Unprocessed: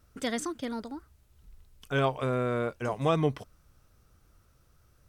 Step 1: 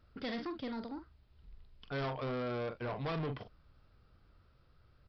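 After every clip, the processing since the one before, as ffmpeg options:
-filter_complex "[0:a]asplit=2[a][b];[b]adelay=44,volume=-10dB[c];[a][c]amix=inputs=2:normalize=0,aresample=11025,asoftclip=type=tanh:threshold=-31.5dB,aresample=44100,volume=-2.5dB"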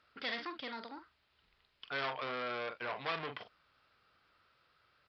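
-af "bandpass=f=2.4k:t=q:w=0.7:csg=0,volume=7dB"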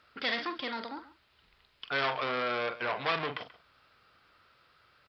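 -filter_complex "[0:a]asplit=2[a][b];[b]adelay=134.1,volume=-17dB,highshelf=f=4k:g=-3.02[c];[a][c]amix=inputs=2:normalize=0,volume=7dB"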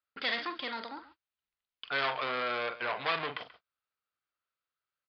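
-af "agate=range=-29dB:threshold=-54dB:ratio=16:detection=peak,lowshelf=f=430:g=-6,aresample=11025,aresample=44100"

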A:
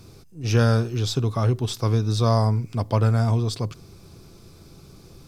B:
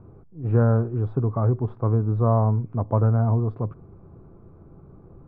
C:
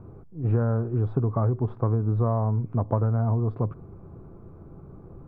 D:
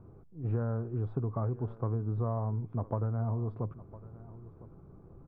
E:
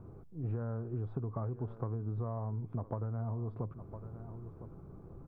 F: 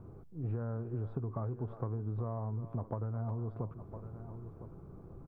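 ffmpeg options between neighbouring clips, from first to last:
-af "lowpass=f=1.2k:w=0.5412,lowpass=f=1.2k:w=1.3066"
-af "acompressor=threshold=-22dB:ratio=6,volume=2.5dB"
-af "aecho=1:1:1007:0.126,volume=-8.5dB"
-af "acompressor=threshold=-38dB:ratio=3,volume=2.5dB"
-filter_complex "[0:a]asplit=2[a][b];[b]adelay=360,highpass=300,lowpass=3.4k,asoftclip=type=hard:threshold=-30dB,volume=-13dB[c];[a][c]amix=inputs=2:normalize=0"

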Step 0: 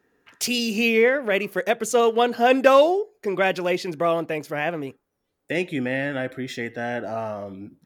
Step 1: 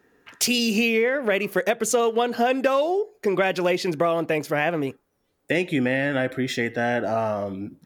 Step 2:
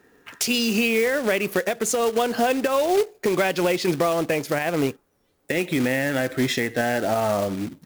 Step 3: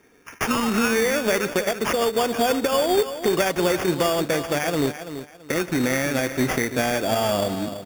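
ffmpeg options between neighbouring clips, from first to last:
-af "acompressor=threshold=-23dB:ratio=10,volume=5.5dB"
-af "acrusher=bits=3:mode=log:mix=0:aa=0.000001,alimiter=limit=-16dB:level=0:latency=1:release=192,volume=4dB"
-af "aecho=1:1:334|668|1002:0.282|0.0761|0.0205,acrusher=samples=11:mix=1:aa=0.000001"

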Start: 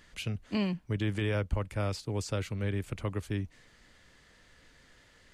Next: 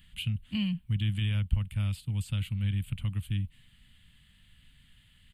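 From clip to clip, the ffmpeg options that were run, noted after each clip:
-af "firequalizer=gain_entry='entry(150,0);entry(230,-6);entry(370,-29);entry(840,-19);entry(2100,-10);entry(3000,2);entry(5700,-25);entry(8200,-5);entry(12000,0)':delay=0.05:min_phase=1,volume=4.5dB"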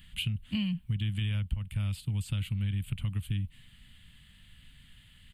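-af "acompressor=threshold=-32dB:ratio=6,volume=4dB"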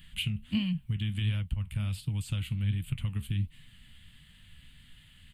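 -af "flanger=delay=6.1:depth=8.4:regen=65:speed=1.4:shape=sinusoidal,volume=5dB"

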